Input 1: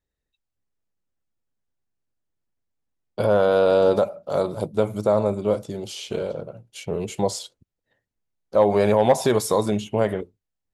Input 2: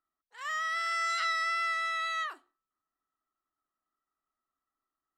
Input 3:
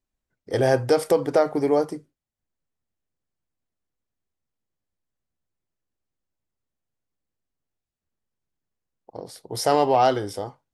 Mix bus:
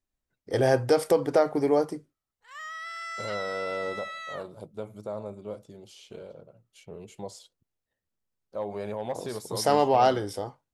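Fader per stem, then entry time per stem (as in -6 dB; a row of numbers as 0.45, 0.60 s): -16.0, -6.0, -2.5 dB; 0.00, 2.10, 0.00 s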